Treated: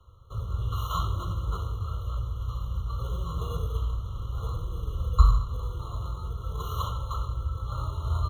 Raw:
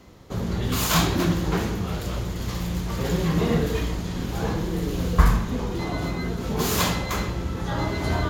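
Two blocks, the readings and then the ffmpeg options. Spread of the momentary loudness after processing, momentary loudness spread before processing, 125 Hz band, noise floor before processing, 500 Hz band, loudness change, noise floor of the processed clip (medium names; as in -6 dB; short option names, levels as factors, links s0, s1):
7 LU, 9 LU, -3.5 dB, -31 dBFS, -15.5 dB, -6.0 dB, -38 dBFS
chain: -filter_complex "[0:a]firequalizer=gain_entry='entry(100,0);entry(210,-30);entry(500,-11);entry(790,-23);entry(1100,0);entry(2100,3);entry(3400,-17);entry(7700,-26);entry(12000,-17)':delay=0.05:min_phase=1,acrossover=split=170|1300[s0][s1][s2];[s1]acrusher=samples=15:mix=1:aa=0.000001[s3];[s0][s3][s2]amix=inputs=3:normalize=0,afftfilt=real='re*eq(mod(floor(b*sr/1024/1400),2),0)':imag='im*eq(mod(floor(b*sr/1024/1400),2),0)':win_size=1024:overlap=0.75"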